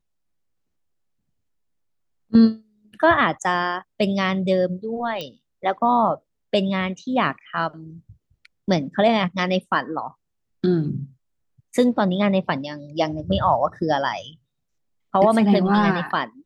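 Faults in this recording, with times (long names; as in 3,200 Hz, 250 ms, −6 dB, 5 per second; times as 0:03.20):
0:05.21: click −17 dBFS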